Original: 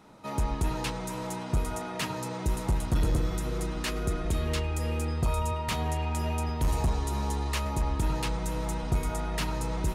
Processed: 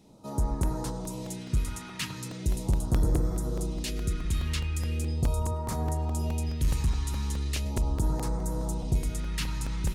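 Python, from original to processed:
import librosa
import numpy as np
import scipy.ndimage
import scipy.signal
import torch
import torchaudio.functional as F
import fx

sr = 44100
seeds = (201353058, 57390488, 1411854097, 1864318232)

y = fx.phaser_stages(x, sr, stages=2, low_hz=570.0, high_hz=2700.0, hz=0.39, feedback_pct=25)
y = fx.buffer_crackle(y, sr, first_s=0.63, period_s=0.21, block=128, kind='repeat')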